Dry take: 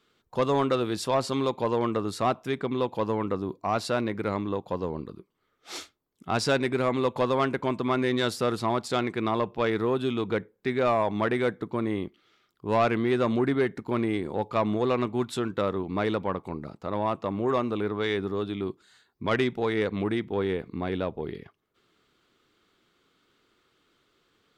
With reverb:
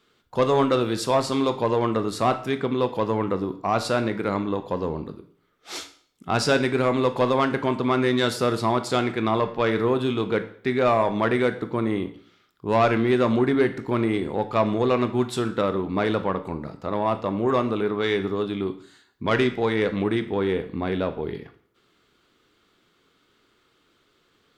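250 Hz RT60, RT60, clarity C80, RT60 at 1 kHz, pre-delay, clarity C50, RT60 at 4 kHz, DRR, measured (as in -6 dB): 0.55 s, 0.55 s, 16.5 dB, 0.55 s, 18 ms, 13.5 dB, 0.50 s, 9.0 dB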